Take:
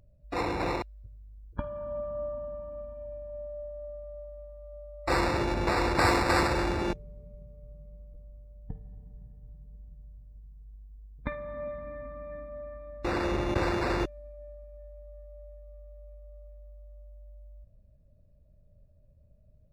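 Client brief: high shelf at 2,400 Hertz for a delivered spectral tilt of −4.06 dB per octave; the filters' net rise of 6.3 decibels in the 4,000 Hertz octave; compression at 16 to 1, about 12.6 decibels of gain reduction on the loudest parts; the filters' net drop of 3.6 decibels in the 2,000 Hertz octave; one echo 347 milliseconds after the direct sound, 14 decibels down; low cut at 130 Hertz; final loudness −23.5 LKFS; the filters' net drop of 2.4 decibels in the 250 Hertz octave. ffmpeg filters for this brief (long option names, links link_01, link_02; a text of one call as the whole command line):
ffmpeg -i in.wav -af "highpass=130,equalizer=frequency=250:width_type=o:gain=-3.5,equalizer=frequency=2000:width_type=o:gain=-8.5,highshelf=frequency=2400:gain=7,equalizer=frequency=4000:width_type=o:gain=3,acompressor=threshold=-32dB:ratio=16,aecho=1:1:347:0.2,volume=16dB" out.wav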